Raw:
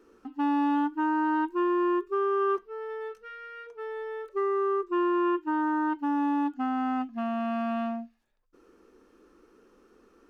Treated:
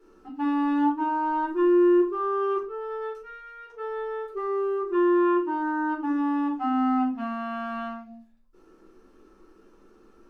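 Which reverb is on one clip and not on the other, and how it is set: simulated room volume 200 m³, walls furnished, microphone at 4.2 m; trim -6.5 dB

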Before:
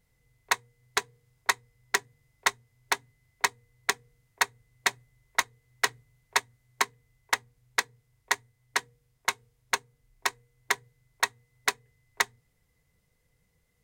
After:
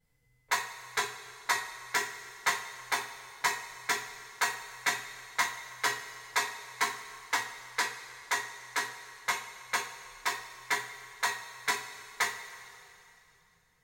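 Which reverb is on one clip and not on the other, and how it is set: two-slope reverb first 0.32 s, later 2.9 s, from -18 dB, DRR -9 dB; trim -11 dB

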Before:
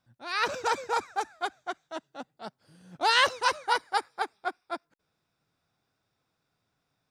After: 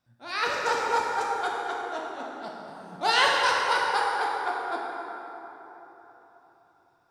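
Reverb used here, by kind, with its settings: plate-style reverb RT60 3.9 s, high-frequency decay 0.5×, DRR -3.5 dB; trim -2 dB

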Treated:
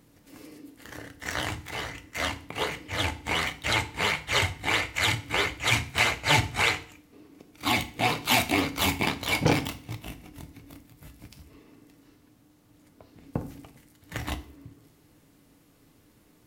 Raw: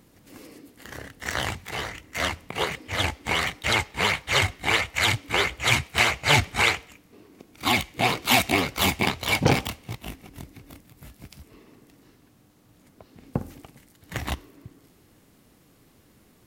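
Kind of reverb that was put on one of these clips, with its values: FDN reverb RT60 0.4 s, low-frequency decay 1.55×, high-frequency decay 0.95×, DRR 8 dB; trim -3.5 dB

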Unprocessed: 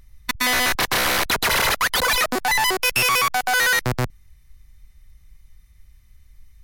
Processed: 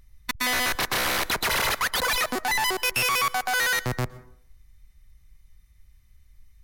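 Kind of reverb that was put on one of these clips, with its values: plate-style reverb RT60 0.63 s, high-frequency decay 0.4×, pre-delay 105 ms, DRR 18 dB; trim -5 dB

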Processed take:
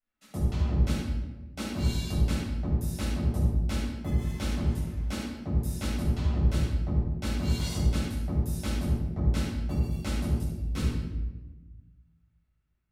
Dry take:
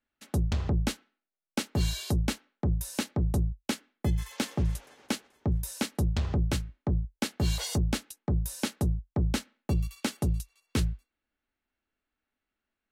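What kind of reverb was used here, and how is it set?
simulated room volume 640 m³, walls mixed, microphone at 6.8 m; trim -15 dB

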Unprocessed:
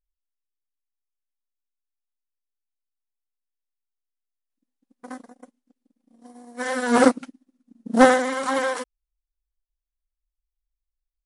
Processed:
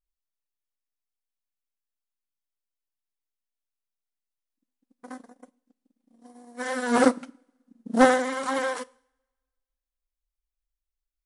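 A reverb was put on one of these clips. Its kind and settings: two-slope reverb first 0.57 s, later 1.7 s, from -24 dB, DRR 20 dB; trim -3.5 dB

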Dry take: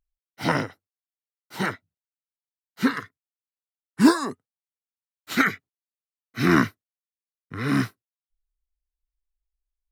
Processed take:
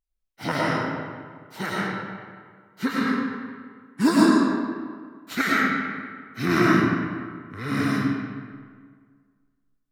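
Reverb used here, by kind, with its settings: algorithmic reverb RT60 1.8 s, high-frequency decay 0.65×, pre-delay 65 ms, DRR -6 dB; trim -4.5 dB

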